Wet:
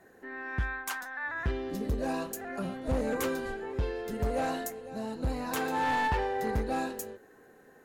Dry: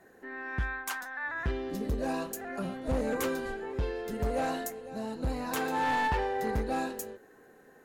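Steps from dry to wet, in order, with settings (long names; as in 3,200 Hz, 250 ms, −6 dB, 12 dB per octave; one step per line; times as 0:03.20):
parametric band 94 Hz +2.5 dB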